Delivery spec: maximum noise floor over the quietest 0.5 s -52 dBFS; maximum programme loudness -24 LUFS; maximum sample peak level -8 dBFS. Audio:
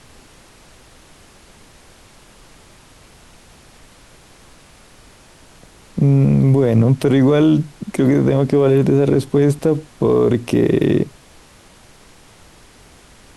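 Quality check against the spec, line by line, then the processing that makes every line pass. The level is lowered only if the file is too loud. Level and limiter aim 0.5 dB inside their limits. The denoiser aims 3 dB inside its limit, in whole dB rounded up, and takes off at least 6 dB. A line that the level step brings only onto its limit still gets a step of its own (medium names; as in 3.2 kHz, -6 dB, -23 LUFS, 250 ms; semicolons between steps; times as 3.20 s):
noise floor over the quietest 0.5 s -46 dBFS: fail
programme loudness -15.5 LUFS: fail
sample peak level -5.0 dBFS: fail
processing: trim -9 dB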